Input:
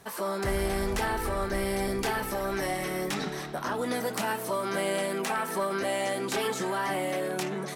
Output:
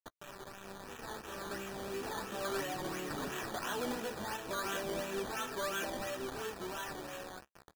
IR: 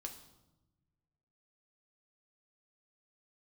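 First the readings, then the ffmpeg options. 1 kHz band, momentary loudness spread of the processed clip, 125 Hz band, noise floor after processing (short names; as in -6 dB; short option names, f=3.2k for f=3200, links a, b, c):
-10.0 dB, 12 LU, -12.5 dB, -61 dBFS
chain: -filter_complex "[0:a]aderivative,acrossover=split=420[a][b];[b]acompressor=threshold=-55dB:ratio=5[c];[a][c]amix=inputs=2:normalize=0,asplit=2[d][e];[e]alimiter=level_in=20.5dB:limit=-24dB:level=0:latency=1:release=397,volume=-20.5dB,volume=1dB[f];[d][f]amix=inputs=2:normalize=0,dynaudnorm=f=300:g=11:m=12.5dB,aresample=8000,acrusher=bits=7:mix=0:aa=0.000001,aresample=44100,flanger=delay=6.3:depth=8.5:regen=36:speed=0.34:shape=sinusoidal,acrusher=samples=13:mix=1:aa=0.000001:lfo=1:lforange=7.8:lforate=2.9,asoftclip=type=tanh:threshold=-36.5dB,asuperstop=centerf=2100:order=4:qfactor=7,volume=8dB"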